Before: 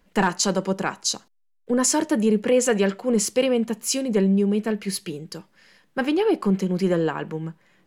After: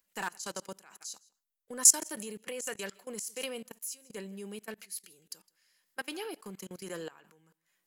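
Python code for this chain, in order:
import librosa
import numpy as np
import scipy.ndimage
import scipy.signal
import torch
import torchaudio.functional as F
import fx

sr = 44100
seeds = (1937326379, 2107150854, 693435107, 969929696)

p1 = fx.peak_eq(x, sr, hz=3500.0, db=-5.5, octaves=2.0)
p2 = p1 + fx.echo_single(p1, sr, ms=159, db=-22.0, dry=0)
p3 = fx.level_steps(p2, sr, step_db=23)
p4 = F.preemphasis(torch.from_numpy(p3), 0.97).numpy()
y = p4 * librosa.db_to_amplitude(7.0)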